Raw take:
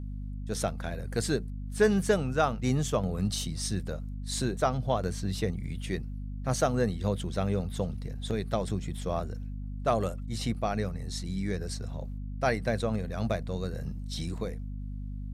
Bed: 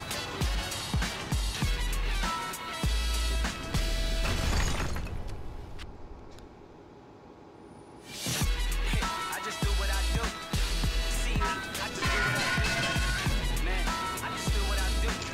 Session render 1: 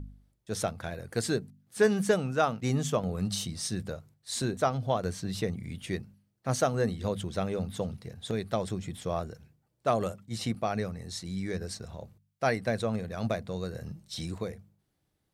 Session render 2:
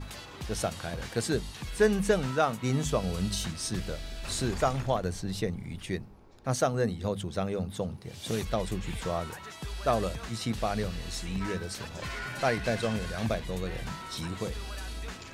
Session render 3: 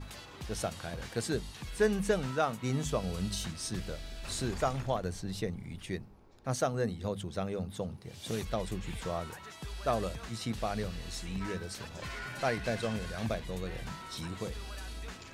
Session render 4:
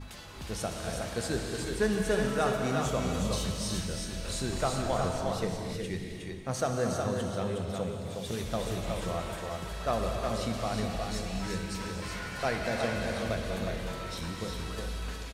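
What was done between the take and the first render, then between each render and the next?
hum removal 50 Hz, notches 5
mix in bed −9.5 dB
level −4 dB
on a send: single-tap delay 364 ms −4.5 dB; on the sum: reverb whose tail is shaped and stops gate 450 ms flat, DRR 2 dB

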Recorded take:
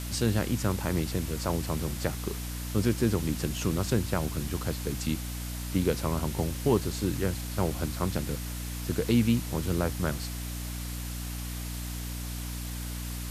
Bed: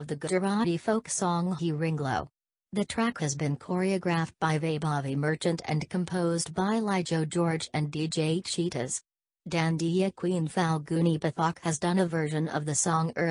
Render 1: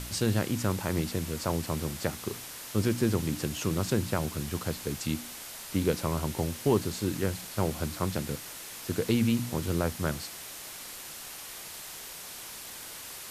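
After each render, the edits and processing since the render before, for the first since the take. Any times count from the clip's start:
hum removal 60 Hz, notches 5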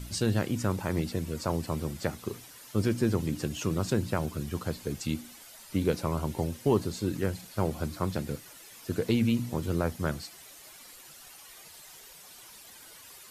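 broadband denoise 11 dB, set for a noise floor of −43 dBFS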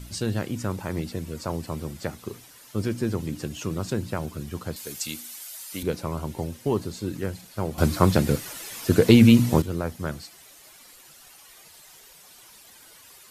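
0:04.76–0:05.83: spectral tilt +3.5 dB per octave
0:07.78–0:09.62: clip gain +12 dB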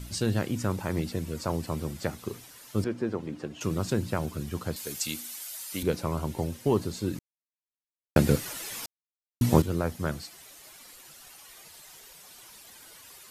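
0:02.84–0:03.61: resonant band-pass 700 Hz, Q 0.53
0:07.19–0:08.16: silence
0:08.86–0:09.41: silence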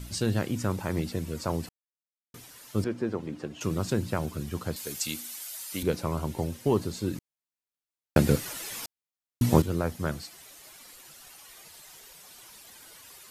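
0:01.69–0:02.34: silence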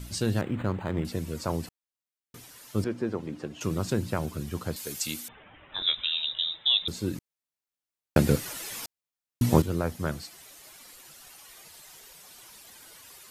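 0:00.41–0:01.05: linearly interpolated sample-rate reduction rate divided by 8×
0:05.28–0:06.88: voice inversion scrambler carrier 3,800 Hz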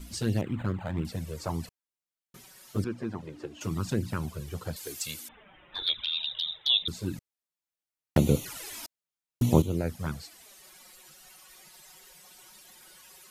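flanger swept by the level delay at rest 6.4 ms, full sweep at −21 dBFS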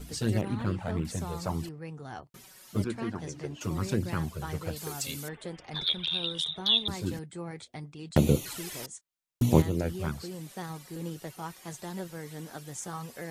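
mix in bed −12.5 dB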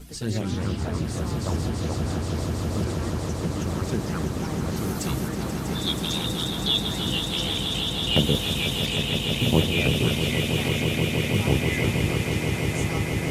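delay with pitch and tempo change per echo 148 ms, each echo −3 semitones, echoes 3
echo that builds up and dies away 161 ms, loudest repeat 8, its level −9 dB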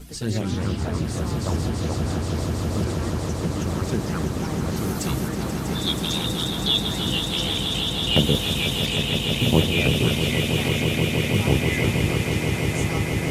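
level +2 dB

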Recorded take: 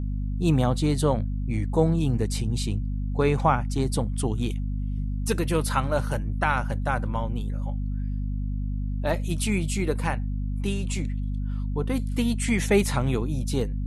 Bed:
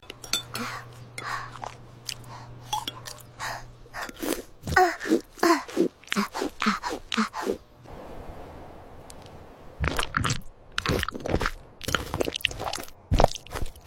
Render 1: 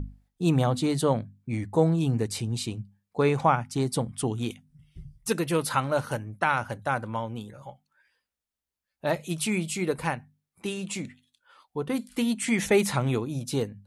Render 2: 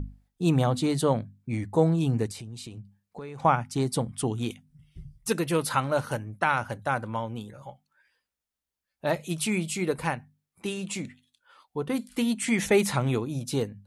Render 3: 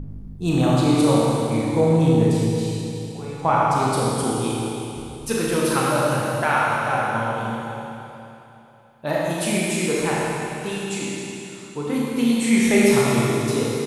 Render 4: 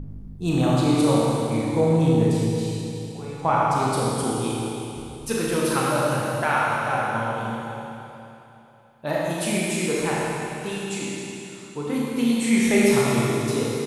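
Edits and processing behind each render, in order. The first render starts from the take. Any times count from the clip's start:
mains-hum notches 50/100/150/200/250 Hz
0:02.31–0:03.45: downward compressor, threshold −37 dBFS
double-tracking delay 13 ms −13.5 dB; four-comb reverb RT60 3.1 s, combs from 27 ms, DRR −6 dB
level −2 dB

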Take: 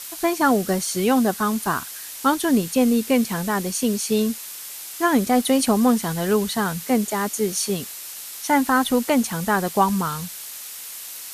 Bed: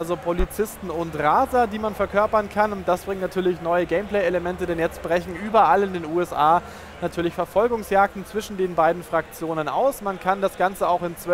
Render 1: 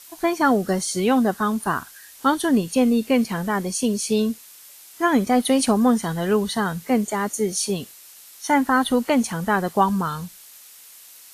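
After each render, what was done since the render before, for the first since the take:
noise reduction from a noise print 10 dB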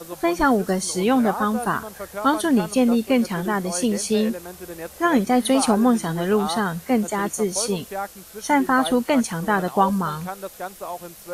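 mix in bed −11.5 dB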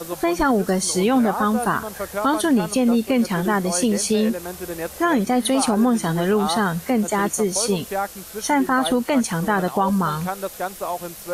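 in parallel at −1 dB: downward compressor, threshold −26 dBFS, peak gain reduction 13 dB
on the sum: brickwall limiter −10 dBFS, peak gain reduction 5.5 dB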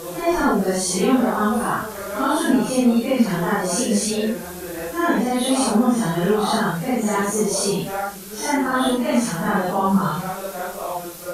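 random phases in long frames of 200 ms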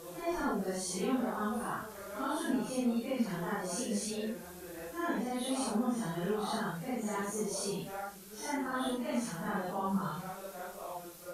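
level −15 dB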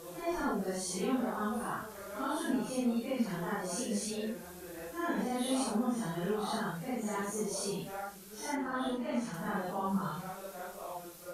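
0:05.14–0:05.63: double-tracking delay 42 ms −3.5 dB
0:08.55–0:09.34: high-shelf EQ 6,100 Hz −11 dB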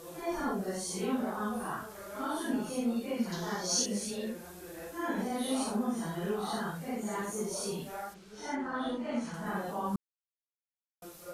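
0:03.32–0:03.86: flat-topped bell 4,800 Hz +14.5 dB 1.1 octaves
0:08.13–0:09.45: low-pass filter 4,500 Hz → 9,800 Hz
0:09.96–0:11.02: silence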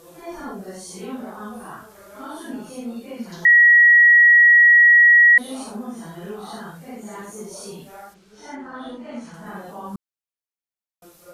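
0:03.45–0:05.38: beep over 1,910 Hz −8 dBFS

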